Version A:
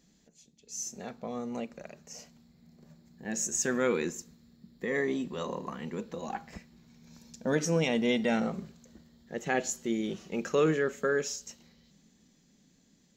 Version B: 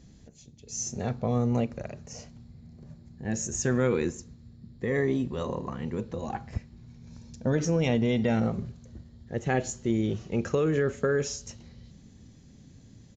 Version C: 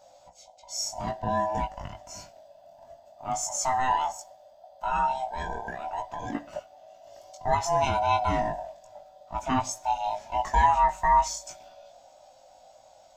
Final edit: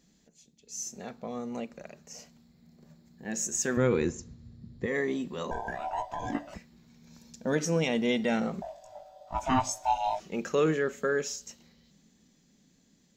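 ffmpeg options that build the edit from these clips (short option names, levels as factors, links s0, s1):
-filter_complex "[2:a]asplit=2[s0][s1];[0:a]asplit=4[s2][s3][s4][s5];[s2]atrim=end=3.772[s6];[1:a]atrim=start=3.768:end=4.862[s7];[s3]atrim=start=4.858:end=5.512[s8];[s0]atrim=start=5.508:end=6.542[s9];[s4]atrim=start=6.538:end=8.622[s10];[s1]atrim=start=8.618:end=10.202[s11];[s5]atrim=start=10.198[s12];[s6][s7]acrossfade=d=0.004:c1=hsin:c2=hsin[s13];[s13][s8]acrossfade=d=0.004:c1=hsin:c2=hsin[s14];[s14][s9]acrossfade=d=0.004:c1=hsin:c2=hsin[s15];[s15][s10]acrossfade=d=0.004:c1=hsin:c2=hsin[s16];[s16][s11]acrossfade=d=0.004:c1=hsin:c2=hsin[s17];[s17][s12]acrossfade=d=0.004:c1=hsin:c2=hsin"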